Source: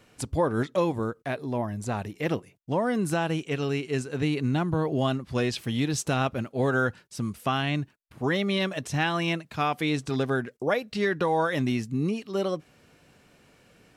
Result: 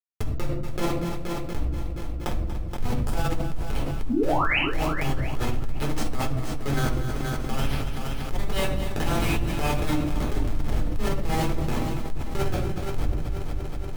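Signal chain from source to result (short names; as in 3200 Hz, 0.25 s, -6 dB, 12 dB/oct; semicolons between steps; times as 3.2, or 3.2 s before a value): wind noise 86 Hz -24 dBFS; low shelf 440 Hz +12 dB; harmonic-percussive split percussive -15 dB; differentiator; Schmitt trigger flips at -39.5 dBFS; painted sound rise, 4.09–4.59, 230–3100 Hz -44 dBFS; on a send: multi-head echo 0.237 s, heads first and second, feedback 47%, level -17 dB; on the sum: shoebox room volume 290 m³, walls furnished, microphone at 4 m; fast leveller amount 70%; gain +7 dB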